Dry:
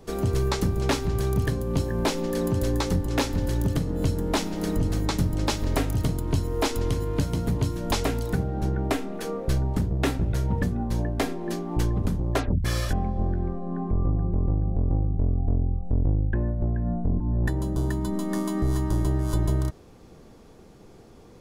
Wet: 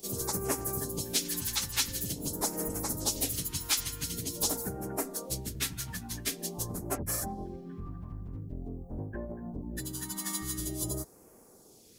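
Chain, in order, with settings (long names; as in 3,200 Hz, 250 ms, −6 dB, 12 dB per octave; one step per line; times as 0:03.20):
all-pass phaser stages 2, 0.26 Hz, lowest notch 470–3,500 Hz
RIAA equalisation recording
time stretch by phase vocoder 0.56×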